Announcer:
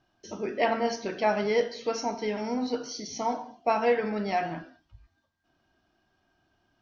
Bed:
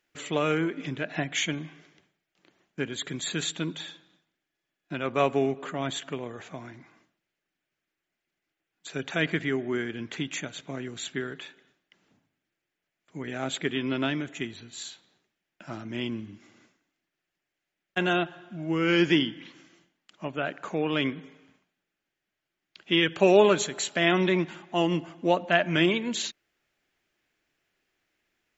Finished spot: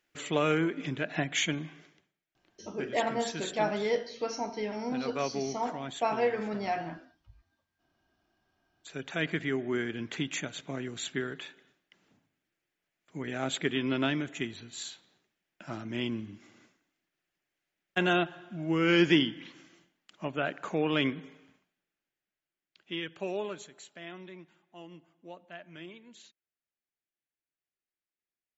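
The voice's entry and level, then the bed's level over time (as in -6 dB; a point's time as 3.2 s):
2.35 s, -4.0 dB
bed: 1.85 s -1 dB
2.07 s -8.5 dB
8.53 s -8.5 dB
9.89 s -1 dB
21.34 s -1 dB
24.31 s -23.5 dB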